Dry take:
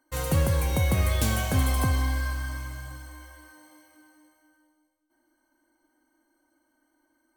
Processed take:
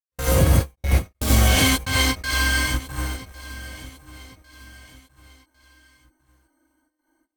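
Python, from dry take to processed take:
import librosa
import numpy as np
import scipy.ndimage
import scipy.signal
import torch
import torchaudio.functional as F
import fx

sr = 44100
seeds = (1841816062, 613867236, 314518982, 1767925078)

p1 = fx.weighting(x, sr, curve='D', at=(1.47, 2.66))
p2 = fx.fuzz(p1, sr, gain_db=38.0, gate_db=-42.0)
p3 = p1 + (p2 * 10.0 ** (-9.5 / 20.0))
p4 = fx.step_gate(p3, sr, bpm=161, pattern='..xxxxx..xx', floor_db=-60.0, edge_ms=4.5)
p5 = p4 + fx.echo_feedback(p4, sr, ms=1102, feedback_pct=40, wet_db=-18.0, dry=0)
p6 = fx.rev_gated(p5, sr, seeds[0], gate_ms=110, shape='rising', drr_db=-7.5)
p7 = fx.end_taper(p6, sr, db_per_s=320.0)
y = p7 * 10.0 ** (-6.5 / 20.0)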